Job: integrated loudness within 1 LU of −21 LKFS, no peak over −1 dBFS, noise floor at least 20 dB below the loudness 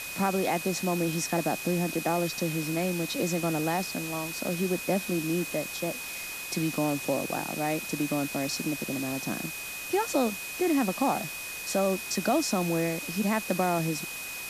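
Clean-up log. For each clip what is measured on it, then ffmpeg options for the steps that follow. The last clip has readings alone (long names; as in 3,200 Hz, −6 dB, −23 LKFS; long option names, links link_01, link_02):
interfering tone 2,500 Hz; level of the tone −38 dBFS; background noise floor −38 dBFS; target noise floor −49 dBFS; integrated loudness −29.0 LKFS; sample peak −13.5 dBFS; target loudness −21.0 LKFS
→ -af "bandreject=frequency=2500:width=30"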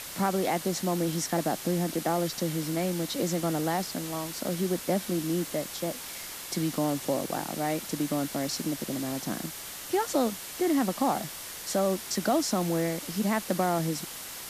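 interfering tone none found; background noise floor −41 dBFS; target noise floor −50 dBFS
→ -af "afftdn=noise_reduction=9:noise_floor=-41"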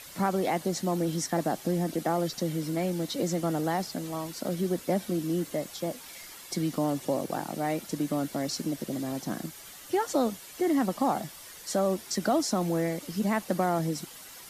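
background noise floor −47 dBFS; target noise floor −50 dBFS
→ -af "afftdn=noise_reduction=6:noise_floor=-47"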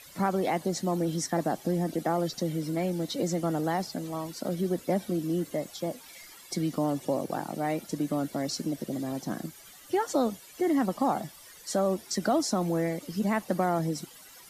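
background noise floor −51 dBFS; integrated loudness −30.0 LKFS; sample peak −14.5 dBFS; target loudness −21.0 LKFS
→ -af "volume=9dB"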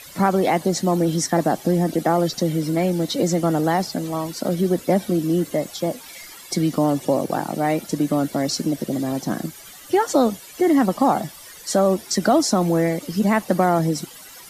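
integrated loudness −21.0 LKFS; sample peak −5.5 dBFS; background noise floor −42 dBFS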